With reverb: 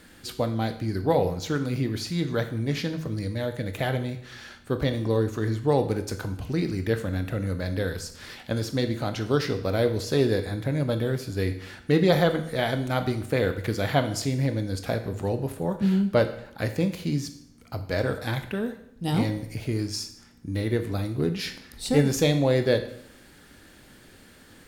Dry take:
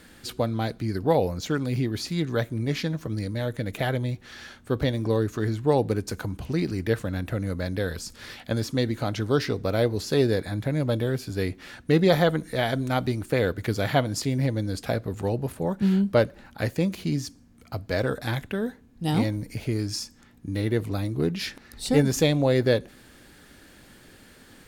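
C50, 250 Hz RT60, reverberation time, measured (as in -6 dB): 11.5 dB, 0.75 s, 0.70 s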